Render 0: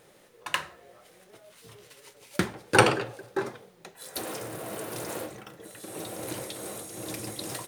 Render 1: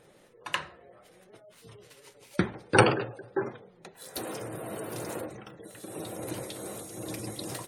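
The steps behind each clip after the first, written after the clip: spectral gate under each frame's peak -25 dB strong; bass shelf 470 Hz +4.5 dB; trim -2.5 dB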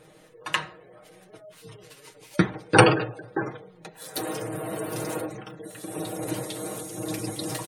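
comb 6.4 ms, depth 67%; trim +3.5 dB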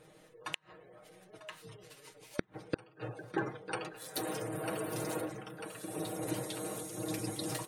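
thinning echo 946 ms, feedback 62%, high-pass 370 Hz, level -16 dB; inverted gate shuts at -12 dBFS, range -37 dB; trim -6 dB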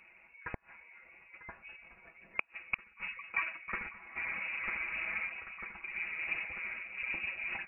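frequency inversion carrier 2.7 kHz

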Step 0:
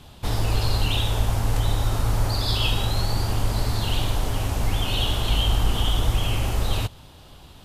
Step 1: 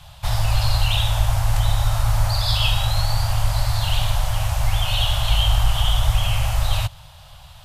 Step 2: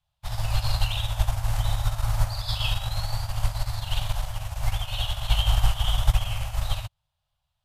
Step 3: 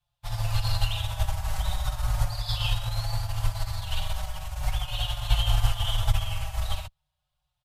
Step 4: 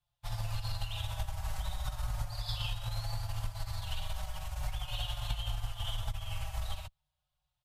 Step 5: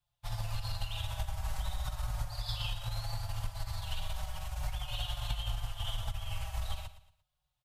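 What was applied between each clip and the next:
inverse Chebyshev band-stop 210–420 Hz, stop band 40 dB; trim +3.5 dB
upward expansion 2.5:1, over -36 dBFS
endless flanger 5.2 ms -0.38 Hz; trim +1.5 dB
compression 10:1, threshold -26 dBFS, peak gain reduction 12 dB; trim -4.5 dB
feedback delay 115 ms, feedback 36%, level -14 dB

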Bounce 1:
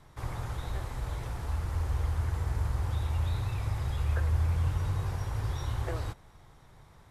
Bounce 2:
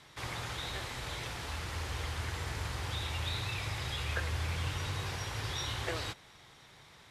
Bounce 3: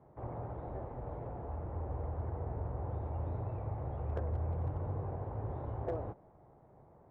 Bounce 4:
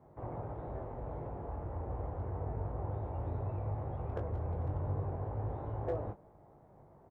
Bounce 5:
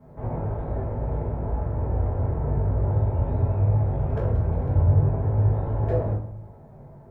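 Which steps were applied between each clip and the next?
frequency weighting D
in parallel at -11 dB: sample-and-hold 22×; on the sum: four-pole ladder low-pass 870 Hz, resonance 35%; overload inside the chain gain 33.5 dB; trim +5.5 dB
doubling 20 ms -6 dB
reverberation RT60 0.55 s, pre-delay 3 ms, DRR -7 dB; trim +2 dB

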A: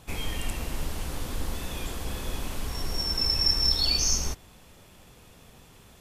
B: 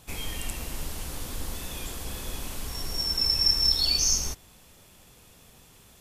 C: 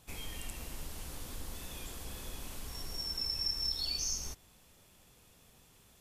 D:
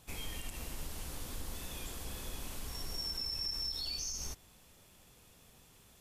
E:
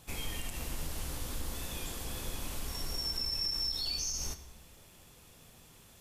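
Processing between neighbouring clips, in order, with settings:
treble shelf 4.2 kHz +8 dB; trim -3.5 dB
compression 1.5:1, threshold -30 dBFS, peak gain reduction 5 dB; trim -8 dB
peak limiter -31 dBFS, peak gain reduction 9.5 dB; trim +1 dB
reverberation RT60 1.1 s, pre-delay 3 ms, DRR 10 dB; trim +3.5 dB

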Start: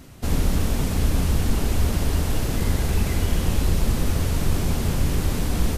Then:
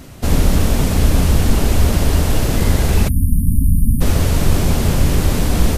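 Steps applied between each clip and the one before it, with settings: spectral selection erased 3.08–4.01 s, 290–8900 Hz; peaking EQ 600 Hz +2.5 dB 0.45 oct; trim +7.5 dB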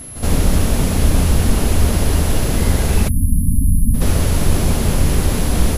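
reverse echo 72 ms -13 dB; whistle 11 kHz -31 dBFS; trim -1 dB

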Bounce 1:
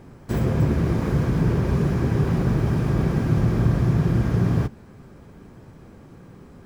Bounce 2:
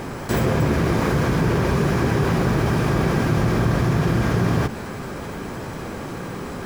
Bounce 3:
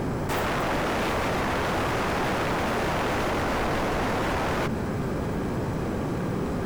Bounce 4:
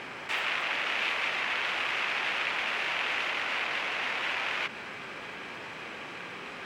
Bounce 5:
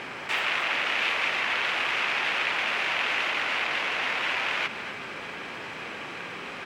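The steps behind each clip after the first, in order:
bass shelf 350 Hz -11.5 dB; level flattener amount 50%; trim +8 dB
tilt shelf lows +4.5 dB; wavefolder -21 dBFS
band-pass filter 2.6 kHz, Q 2.4; trim +7 dB
delay 248 ms -13 dB; trim +3.5 dB

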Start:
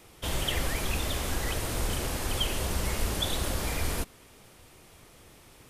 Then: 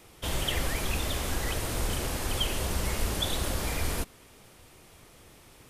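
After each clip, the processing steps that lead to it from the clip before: no audible change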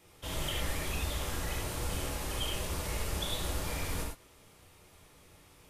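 gated-style reverb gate 130 ms flat, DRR -2.5 dB; trim -9 dB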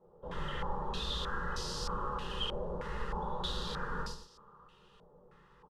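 static phaser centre 450 Hz, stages 8; on a send: delay 121 ms -10 dB; on the sum: step-sequenced low-pass 3.2 Hz 660–5000 Hz

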